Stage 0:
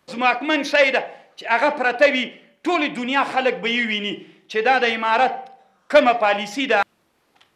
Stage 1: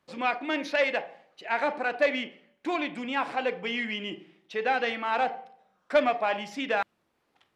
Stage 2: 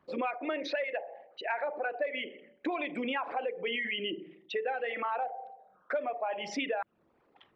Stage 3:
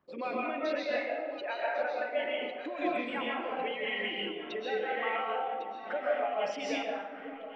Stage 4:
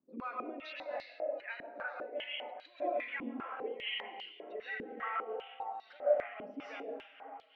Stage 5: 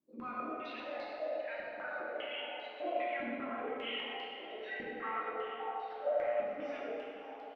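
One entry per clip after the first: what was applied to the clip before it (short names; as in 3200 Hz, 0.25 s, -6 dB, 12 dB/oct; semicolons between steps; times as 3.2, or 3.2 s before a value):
high shelf 4500 Hz -5.5 dB; gain -9 dB
formant sharpening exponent 2; compressor 10:1, threshold -35 dBFS, peak gain reduction 18 dB; gain +5 dB
echo with dull and thin repeats by turns 0.551 s, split 1100 Hz, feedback 69%, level -9 dB; reverb RT60 0.95 s, pre-delay 95 ms, DRR -5 dB; noise-modulated level, depth 55%; gain -3 dB
stepped band-pass 5 Hz 260–4400 Hz; gain +3 dB
flange 1 Hz, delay 2.6 ms, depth 9.1 ms, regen +82%; echo 0.567 s -16 dB; plate-style reverb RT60 2.5 s, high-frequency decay 0.65×, DRR -3.5 dB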